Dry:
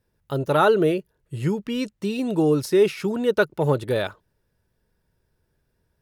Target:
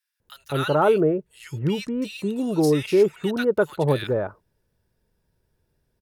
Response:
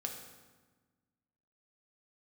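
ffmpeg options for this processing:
-filter_complex "[0:a]acrossover=split=1500[link_01][link_02];[link_01]adelay=200[link_03];[link_03][link_02]amix=inputs=2:normalize=0"

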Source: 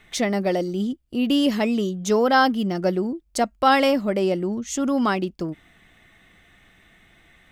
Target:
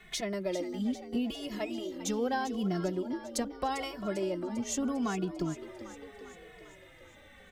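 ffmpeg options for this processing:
ffmpeg -i in.wav -filter_complex "[0:a]acrossover=split=120[link_01][link_02];[link_02]acompressor=threshold=-31dB:ratio=5[link_03];[link_01][link_03]amix=inputs=2:normalize=0,asplit=2[link_04][link_05];[link_05]asplit=7[link_06][link_07][link_08][link_09][link_10][link_11][link_12];[link_06]adelay=398,afreqshift=48,volume=-12dB[link_13];[link_07]adelay=796,afreqshift=96,volume=-16.4dB[link_14];[link_08]adelay=1194,afreqshift=144,volume=-20.9dB[link_15];[link_09]adelay=1592,afreqshift=192,volume=-25.3dB[link_16];[link_10]adelay=1990,afreqshift=240,volume=-29.7dB[link_17];[link_11]adelay=2388,afreqshift=288,volume=-34.2dB[link_18];[link_12]adelay=2786,afreqshift=336,volume=-38.6dB[link_19];[link_13][link_14][link_15][link_16][link_17][link_18][link_19]amix=inputs=7:normalize=0[link_20];[link_04][link_20]amix=inputs=2:normalize=0,asplit=2[link_21][link_22];[link_22]adelay=2.3,afreqshift=-0.78[link_23];[link_21][link_23]amix=inputs=2:normalize=1,volume=1.5dB" out.wav

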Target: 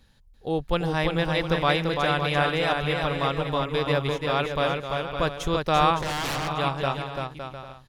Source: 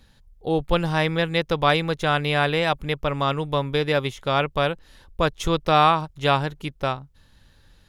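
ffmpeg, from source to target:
ffmpeg -i in.wav -filter_complex "[0:a]aecho=1:1:340|561|704.6|798|858.7:0.631|0.398|0.251|0.158|0.1,asplit=3[link_01][link_02][link_03];[link_01]afade=type=out:start_time=6:duration=0.02[link_04];[link_02]aeval=exprs='0.106*(abs(mod(val(0)/0.106+3,4)-2)-1)':channel_layout=same,afade=type=in:start_time=6:duration=0.02,afade=type=out:start_time=6.48:duration=0.02[link_05];[link_03]afade=type=in:start_time=6.48:duration=0.02[link_06];[link_04][link_05][link_06]amix=inputs=3:normalize=0,volume=-4dB" out.wav

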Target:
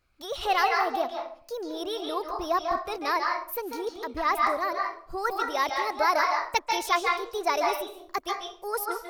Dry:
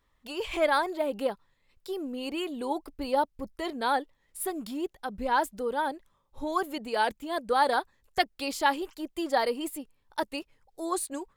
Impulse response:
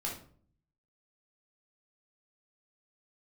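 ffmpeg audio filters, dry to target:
-filter_complex "[0:a]asetrate=55125,aresample=44100,asplit=2[link_01][link_02];[link_02]acrossover=split=560 7600:gain=0.141 1 0.126[link_03][link_04][link_05];[link_03][link_04][link_05]amix=inputs=3:normalize=0[link_06];[1:a]atrim=start_sample=2205,adelay=140[link_07];[link_06][link_07]afir=irnorm=-1:irlink=0,volume=-1.5dB[link_08];[link_01][link_08]amix=inputs=2:normalize=0"

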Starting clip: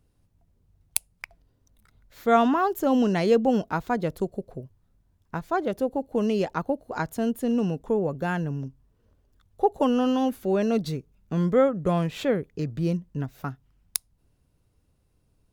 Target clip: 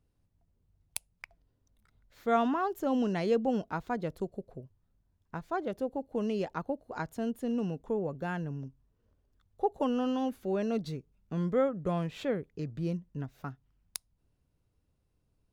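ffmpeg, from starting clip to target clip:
ffmpeg -i in.wav -af "highshelf=frequency=9200:gain=-8,volume=-7.5dB" out.wav

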